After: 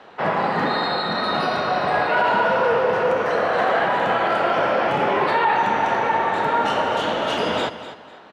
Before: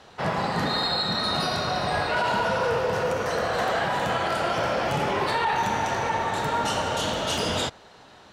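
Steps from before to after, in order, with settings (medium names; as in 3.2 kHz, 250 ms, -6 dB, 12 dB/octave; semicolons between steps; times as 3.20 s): three-band isolator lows -16 dB, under 190 Hz, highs -18 dB, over 3.1 kHz; on a send: feedback delay 250 ms, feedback 26%, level -13 dB; on the sum: trim +6 dB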